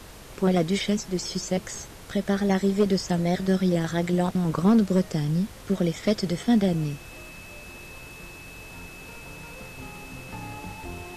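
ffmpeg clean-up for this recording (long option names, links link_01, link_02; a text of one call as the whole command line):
ffmpeg -i in.wav -af "bandreject=frequency=45.5:width_type=h:width=4,bandreject=frequency=91:width_type=h:width=4,bandreject=frequency=136.5:width_type=h:width=4,bandreject=frequency=182:width_type=h:width=4,bandreject=frequency=2600:width=30,afftdn=noise_reduction=26:noise_floor=-43" out.wav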